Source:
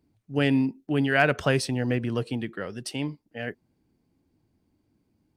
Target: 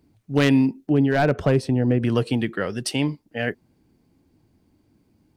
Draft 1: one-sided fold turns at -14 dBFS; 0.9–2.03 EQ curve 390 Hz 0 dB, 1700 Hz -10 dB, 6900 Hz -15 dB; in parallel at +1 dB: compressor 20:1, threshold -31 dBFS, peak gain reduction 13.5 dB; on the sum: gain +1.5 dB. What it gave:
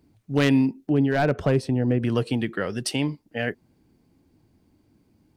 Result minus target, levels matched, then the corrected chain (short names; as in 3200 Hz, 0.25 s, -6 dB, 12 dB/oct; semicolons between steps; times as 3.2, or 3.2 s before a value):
compressor: peak gain reduction +6.5 dB
one-sided fold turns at -14 dBFS; 0.9–2.03 EQ curve 390 Hz 0 dB, 1700 Hz -10 dB, 6900 Hz -15 dB; in parallel at +1 dB: compressor 20:1, threshold -24 dBFS, peak gain reduction 7 dB; on the sum: gain +1.5 dB